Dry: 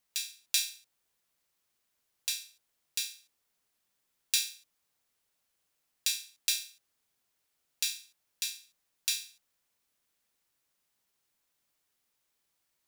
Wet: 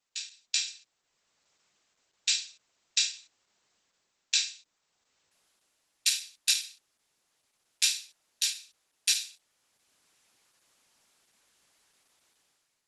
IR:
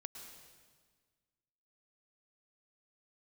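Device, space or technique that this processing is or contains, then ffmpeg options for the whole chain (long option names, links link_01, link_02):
video call: -af "highpass=frequency=150:poles=1,dynaudnorm=framelen=180:gausssize=7:maxgain=14dB" -ar 48000 -c:a libopus -b:a 12k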